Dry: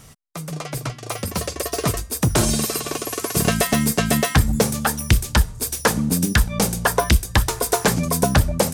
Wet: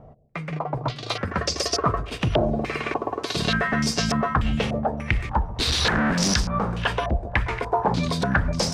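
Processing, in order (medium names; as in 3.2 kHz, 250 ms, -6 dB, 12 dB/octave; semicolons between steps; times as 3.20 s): 5.59–6.34 s: one-bit comparator; peak limiter -13.5 dBFS, peak gain reduction 8 dB; two-band feedback delay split 620 Hz, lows 138 ms, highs 482 ms, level -13.5 dB; step-sequenced low-pass 3.4 Hz 670–5300 Hz; trim -1 dB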